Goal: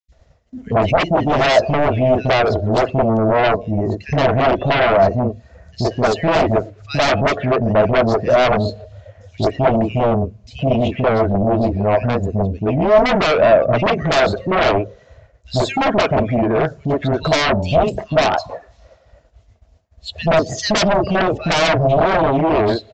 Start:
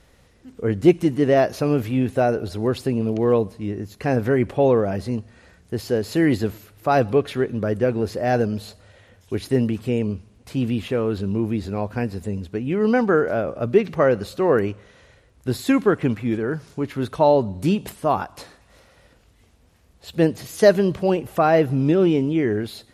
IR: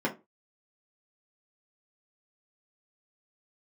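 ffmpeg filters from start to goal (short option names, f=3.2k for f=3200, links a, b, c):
-filter_complex "[0:a]acrossover=split=280|2500[a][b][c];[a]adelay=80[d];[b]adelay=120[e];[d][e][c]amix=inputs=3:normalize=0,afftdn=nr=16:nf=-39,aresample=16000,aeval=exprs='0.794*sin(PI/2*10*val(0)/0.794)':c=same,aresample=44100,equalizer=f=650:w=5.1:g=14.5,agate=range=-33dB:threshold=-36dB:ratio=3:detection=peak,asplit=2[f][g];[g]acompressor=threshold=-20dB:ratio=6,volume=-2.5dB[h];[f][h]amix=inputs=2:normalize=0,volume=-13dB"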